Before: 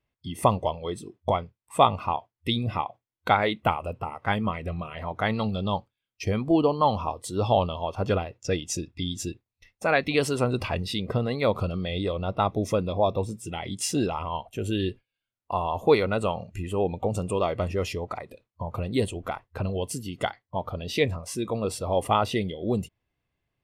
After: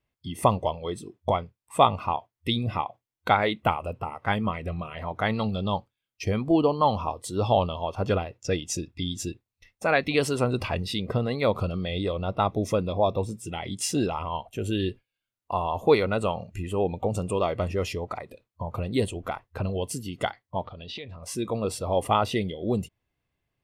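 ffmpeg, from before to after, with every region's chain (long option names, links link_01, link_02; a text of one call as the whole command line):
ffmpeg -i in.wav -filter_complex "[0:a]asettb=1/sr,asplit=3[link_01][link_02][link_03];[link_01]atrim=end=20.644[link_04];[link_02]atrim=start=20.64:end=21.22,asetpts=PTS-STARTPTS,afade=type=in:duration=0.004:curve=qsin,afade=type=out:start_time=0.576:duration=0.004:curve=qsin,acompressor=threshold=-38dB:ratio=6:attack=3.2:release=140:knee=1:detection=peak,lowpass=frequency=3700:width_type=q:width=2.1[link_05];[link_03]atrim=start=21.216[link_06];[link_04][link_05]acrossfade=duration=0.004:curve1=hsin:curve2=qsin[link_07];[link_07][link_06]acrossfade=duration=0.004:curve1=qsin:curve2=hsin" out.wav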